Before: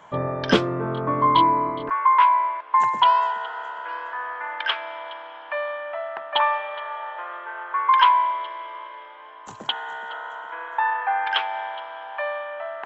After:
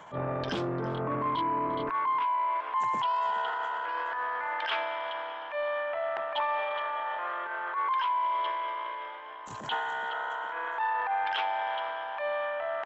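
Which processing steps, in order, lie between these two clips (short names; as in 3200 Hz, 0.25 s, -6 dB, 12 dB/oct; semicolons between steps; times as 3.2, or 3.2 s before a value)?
dynamic EQ 1600 Hz, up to -4 dB, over -32 dBFS, Q 1.1; transient shaper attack -12 dB, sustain +8 dB; limiter -15.5 dBFS, peak gain reduction 7 dB; compressor, threshold -26 dBFS, peak gain reduction 7 dB; on a send: echo 0.347 s -20.5 dB; on the sum: core saturation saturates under 550 Hz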